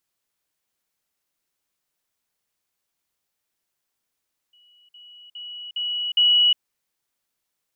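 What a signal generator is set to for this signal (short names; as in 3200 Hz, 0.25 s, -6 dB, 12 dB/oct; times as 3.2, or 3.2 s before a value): level ladder 2930 Hz -53.5 dBFS, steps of 10 dB, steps 5, 0.36 s 0.05 s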